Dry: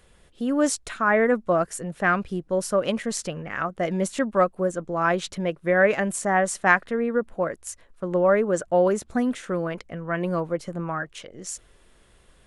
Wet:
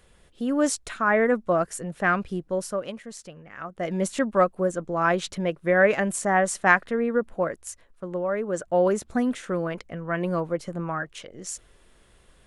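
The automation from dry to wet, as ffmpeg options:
-af "volume=19dB,afade=t=out:st=2.42:d=0.54:silence=0.281838,afade=t=in:st=3.56:d=0.51:silence=0.251189,afade=t=out:st=7.42:d=0.87:silence=0.375837,afade=t=in:st=8.29:d=0.61:silence=0.398107"

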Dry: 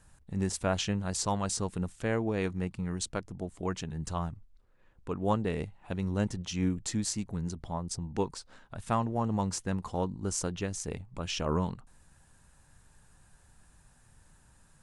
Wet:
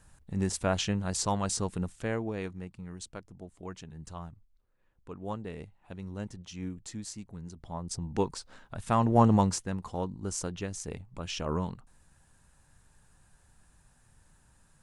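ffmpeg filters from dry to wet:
-af "volume=19.5dB,afade=t=out:st=1.7:d=0.95:silence=0.334965,afade=t=in:st=7.53:d=0.6:silence=0.298538,afade=t=in:st=8.94:d=0.27:silence=0.398107,afade=t=out:st=9.21:d=0.43:silence=0.251189"

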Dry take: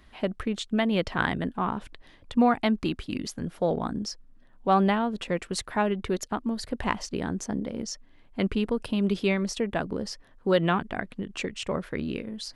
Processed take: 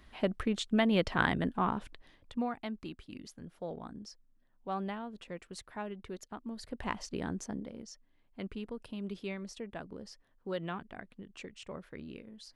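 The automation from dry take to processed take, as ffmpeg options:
-af "volume=6.5dB,afade=t=out:st=1.64:d=0.85:silence=0.237137,afade=t=in:st=6.31:d=0.97:silence=0.354813,afade=t=out:st=7.28:d=0.57:silence=0.375837"

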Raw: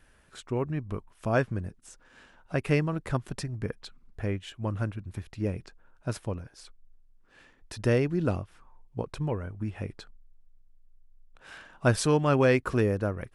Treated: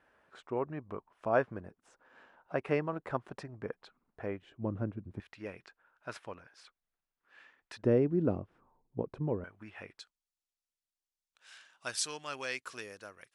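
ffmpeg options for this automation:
-af "asetnsamples=n=441:p=0,asendcmd='4.42 bandpass f 320;5.2 bandpass f 1700;7.83 bandpass f 330;9.44 bandpass f 1800;9.99 bandpass f 5900',bandpass=f=790:t=q:w=0.81:csg=0"

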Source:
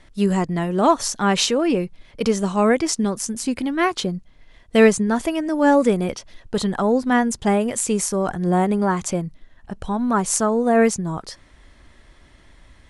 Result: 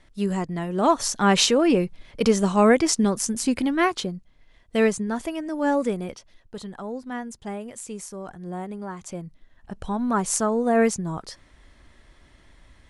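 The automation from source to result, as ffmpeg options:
-af "volume=11.5dB,afade=t=in:st=0.66:d=0.67:silence=0.473151,afade=t=out:st=3.67:d=0.48:silence=0.421697,afade=t=out:st=5.8:d=0.78:silence=0.421697,afade=t=in:st=8.99:d=0.84:silence=0.281838"

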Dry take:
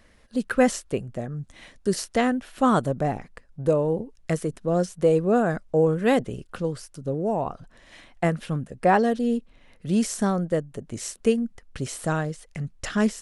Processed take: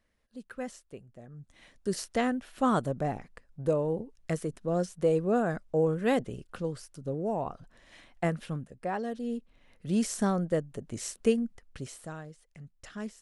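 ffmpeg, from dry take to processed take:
-af "volume=5dB,afade=t=in:st=1.19:d=0.85:silence=0.237137,afade=t=out:st=8.42:d=0.48:silence=0.354813,afade=t=in:st=8.9:d=1.3:silence=0.281838,afade=t=out:st=11.38:d=0.73:silence=0.237137"

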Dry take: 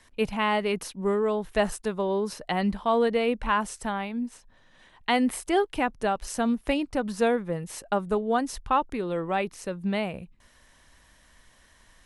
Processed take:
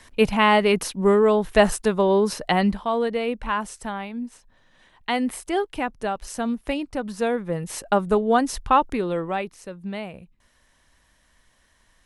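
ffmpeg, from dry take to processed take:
-af "volume=14.5dB,afade=t=out:st=2.47:d=0.43:silence=0.375837,afade=t=in:st=7.28:d=0.47:silence=0.473151,afade=t=out:st=8.93:d=0.61:silence=0.316228"

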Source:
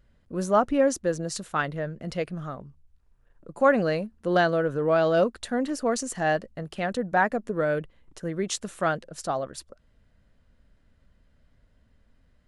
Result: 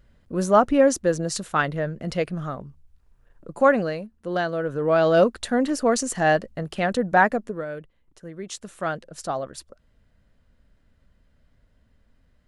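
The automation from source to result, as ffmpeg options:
-af "volume=21dB,afade=t=out:st=3.54:d=0.4:silence=0.398107,afade=t=in:st=4.51:d=0.73:silence=0.375837,afade=t=out:st=7.25:d=0.4:silence=0.237137,afade=t=in:st=8.37:d=0.86:silence=0.398107"

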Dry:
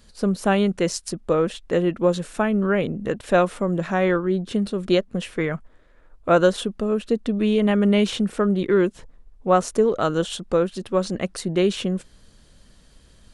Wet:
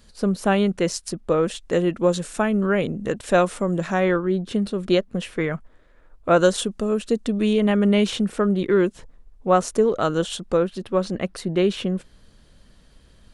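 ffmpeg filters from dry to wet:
-af "asetnsamples=n=441:p=0,asendcmd='1.43 equalizer g 6.5;4 equalizer g -0.5;6.39 equalizer g 8.5;7.53 equalizer g 1;10.57 equalizer g -6',equalizer=f=7.6k:t=o:w=1.3:g=-0.5"

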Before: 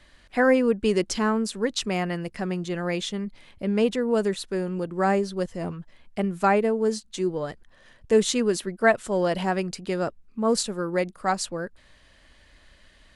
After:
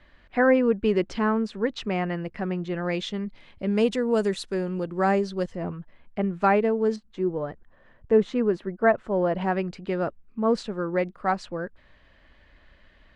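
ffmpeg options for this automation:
-af "asetnsamples=n=441:p=0,asendcmd='2.85 lowpass f 4200;3.71 lowpass f 8700;4.54 lowpass f 5400;5.55 lowpass f 2200;6.42 lowpass f 3600;6.96 lowpass f 1500;9.41 lowpass f 2600',lowpass=2.6k"

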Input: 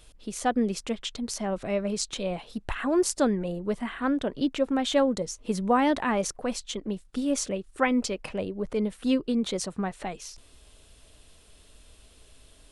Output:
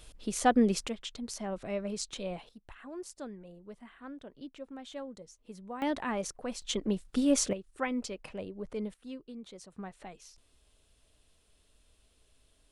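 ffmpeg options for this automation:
-af "asetnsamples=n=441:p=0,asendcmd='0.88 volume volume -7dB;2.49 volume volume -19dB;5.82 volume volume -7.5dB;6.62 volume volume 1dB;7.53 volume volume -9dB;8.94 volume volume -19dB;9.72 volume volume -12.5dB',volume=1dB"

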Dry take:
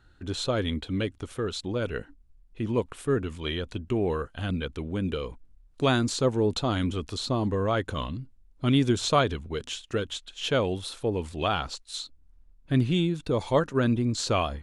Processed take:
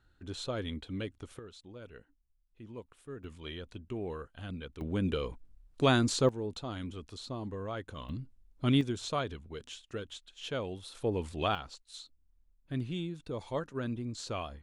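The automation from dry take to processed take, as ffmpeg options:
-af "asetnsamples=n=441:p=0,asendcmd='1.39 volume volume -19dB;3.24 volume volume -11.5dB;4.81 volume volume -2dB;6.29 volume volume -12.5dB;8.09 volume volume -4dB;8.81 volume volume -11dB;10.95 volume volume -4dB;11.55 volume volume -12dB',volume=-9dB"

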